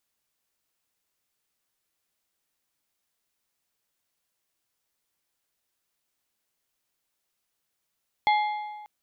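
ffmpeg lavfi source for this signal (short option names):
-f lavfi -i "aevalsrc='0.133*pow(10,-3*t/1.44)*sin(2*PI*842*t)+0.0596*pow(10,-3*t/1.094)*sin(2*PI*2105*t)+0.0266*pow(10,-3*t/0.95)*sin(2*PI*3368*t)+0.0119*pow(10,-3*t/0.889)*sin(2*PI*4210*t)':d=0.59:s=44100"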